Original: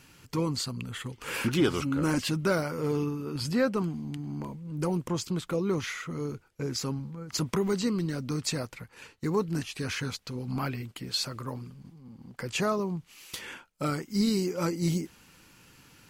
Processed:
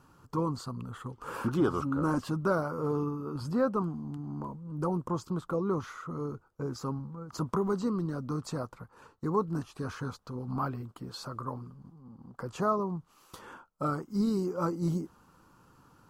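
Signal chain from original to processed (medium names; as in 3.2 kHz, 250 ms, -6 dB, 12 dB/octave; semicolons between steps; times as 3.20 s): resonant high shelf 1.6 kHz -10 dB, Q 3; trim -2.5 dB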